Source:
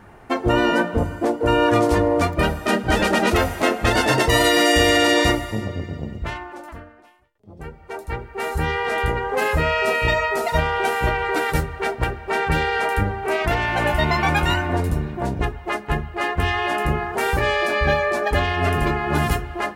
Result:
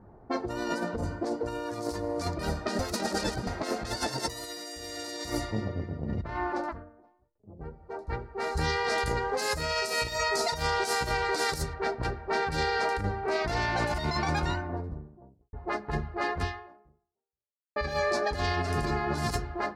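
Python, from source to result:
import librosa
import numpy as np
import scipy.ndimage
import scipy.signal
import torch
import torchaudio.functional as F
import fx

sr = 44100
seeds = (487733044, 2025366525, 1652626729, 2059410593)

y = fx.over_compress(x, sr, threshold_db=-34.0, ratio=-1.0, at=(6.04, 6.71), fade=0.02)
y = fx.high_shelf(y, sr, hz=3900.0, db=10.5, at=(7.65, 11.74))
y = fx.studio_fade_out(y, sr, start_s=13.89, length_s=1.64)
y = fx.edit(y, sr, fx.reverse_span(start_s=2.79, length_s=0.68),
    fx.fade_out_span(start_s=16.4, length_s=1.36, curve='exp'), tone=tone)
y = fx.env_lowpass(y, sr, base_hz=690.0, full_db=-13.5)
y = fx.high_shelf_res(y, sr, hz=3700.0, db=7.0, q=3.0)
y = fx.over_compress(y, sr, threshold_db=-21.0, ratio=-0.5)
y = F.gain(torch.from_numpy(y), -8.0).numpy()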